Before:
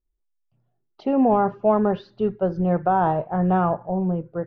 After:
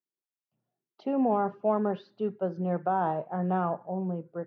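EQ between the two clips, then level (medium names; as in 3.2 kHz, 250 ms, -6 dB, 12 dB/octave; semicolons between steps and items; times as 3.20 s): high-pass 160 Hz 24 dB/octave; -7.5 dB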